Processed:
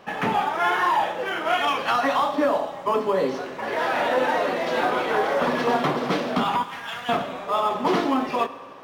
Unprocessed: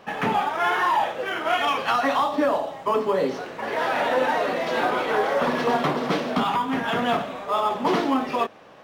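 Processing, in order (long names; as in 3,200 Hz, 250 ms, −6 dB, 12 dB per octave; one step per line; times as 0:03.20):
0:06.63–0:07.09: guitar amp tone stack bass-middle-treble 10-0-10
on a send: convolution reverb RT60 1.9 s, pre-delay 3 ms, DRR 12 dB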